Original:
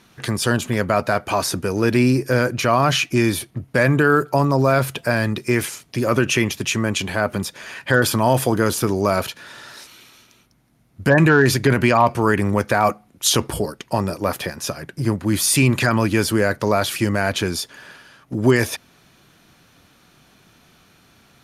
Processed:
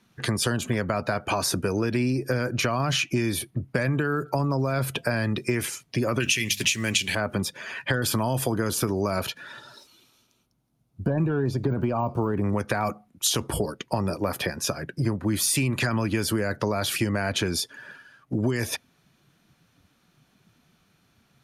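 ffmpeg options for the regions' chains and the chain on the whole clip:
-filter_complex "[0:a]asettb=1/sr,asplit=3[a][b][c];[a]atrim=end=6.204[d];[b]atrim=start=6.2:end=7.15,asetpts=PTS-STARTPTS,afade=t=in:d=0.004:c=qsin,afade=t=out:st=0.946:d=0.004:c=qsin,highshelf=f=1.6k:t=q:w=1.5:g=10,bandreject=f=50:t=h:w=6,bandreject=f=100:t=h:w=6,bandreject=f=150:t=h:w=6,bandreject=f=200:t=h:w=6,bandreject=f=250:t=h:w=6,acrusher=bits=5:mix=0:aa=0.5[e];[c]atrim=start=7.146[f];[d][e]acrossfade=d=0.004:c1=hsin:c2=qsin[g];[g][f]acrossfade=d=0.004:c1=qsin:c2=hsin,asettb=1/sr,asplit=3[h][i][j];[h]atrim=end=9.594[k];[i]atrim=start=9.59:end=12.44,asetpts=PTS-STARTPTS,afade=t=in:d=0.004:c=qsin,afade=t=out:st=2.846:d=0.004:c=qsin,deesser=1,equalizer=f=1.9k:w=1.9:g=-9[l];[j]atrim=start=12.436[m];[k][l]acrossfade=d=0.004:c1=hsin:c2=qsin[n];[n][m]acrossfade=d=0.004:c1=qsin:c2=hsin,acrossover=split=260|3000[o][p][q];[p]acompressor=threshold=-19dB:ratio=6[r];[o][r][q]amix=inputs=3:normalize=0,afftdn=nr=12:nf=-41,acompressor=threshold=-21dB:ratio=6"

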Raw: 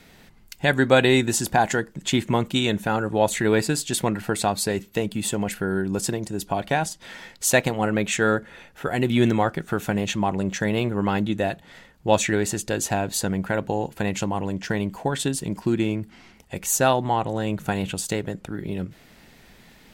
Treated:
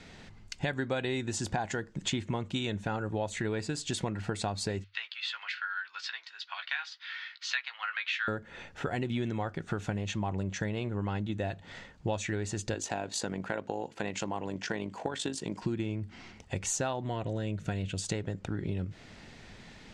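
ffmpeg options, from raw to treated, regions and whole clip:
-filter_complex "[0:a]asettb=1/sr,asplit=3[a][b][c];[a]atrim=end=4.844[d];[b]atrim=start=4.84:end=8.28,asetpts=PTS-STARTPTS,afade=t=in:d=0.004:c=qsin,afade=t=out:st=3.436:d=0.004:c=qsin,asuperpass=centerf=2400:order=8:qfactor=0.72,asplit=2[e][f];[f]adelay=15,volume=-7.5dB[g];[e][g]amix=inputs=2:normalize=0,atrim=end_sample=151704[h];[c]atrim=start=8.276[i];[d][h]acrossfade=d=0.004:c1=hsin:c2=qsin[j];[j][i]acrossfade=d=0.004:c1=qsin:c2=hsin,asettb=1/sr,asplit=3[k][l][m];[k]atrim=end=12.744[n];[l]atrim=start=12.74:end=15.62,asetpts=PTS-STARTPTS,afade=t=in:d=0.004:c=qsin,afade=t=out:st=2.876:d=0.004:c=qsin,highpass=240,tremolo=f=50:d=0.519[o];[m]atrim=start=15.616[p];[n][o]acrossfade=d=0.004:c1=hsin:c2=qsin[q];[q][p]acrossfade=d=0.004:c1=qsin:c2=hsin,asettb=1/sr,asplit=3[r][s][t];[r]atrim=end=17.034[u];[s]atrim=start=17.03:end=18.04,asetpts=PTS-STARTPTS,afade=t=in:d=0.004:c=qsin,afade=t=out:st=1.006:d=0.004:c=qsin,asuperstop=centerf=820:order=4:qfactor=5.1,equalizer=f=1.1k:t=o:w=0.51:g=-8[v];[t]atrim=start=18.036[w];[u][v]acrossfade=d=0.004:c1=hsin:c2=qsin[x];[x][w]acrossfade=d=0.004:c1=qsin:c2=hsin,lowpass=f=7.5k:w=0.5412,lowpass=f=7.5k:w=1.3066,equalizer=f=98:t=o:w=0.29:g=10,acompressor=threshold=-30dB:ratio=6"

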